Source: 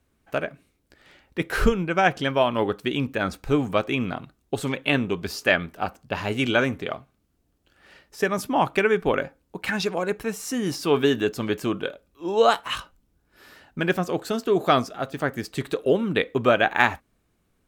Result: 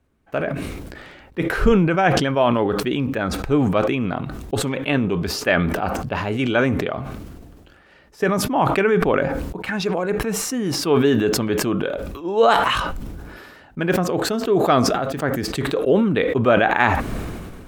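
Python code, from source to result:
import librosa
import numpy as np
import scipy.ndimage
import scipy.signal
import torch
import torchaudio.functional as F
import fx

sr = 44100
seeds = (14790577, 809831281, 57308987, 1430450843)

y = fx.high_shelf(x, sr, hz=2700.0, db=-9.5)
y = fx.sustainer(y, sr, db_per_s=30.0)
y = F.gain(torch.from_numpy(y), 2.5).numpy()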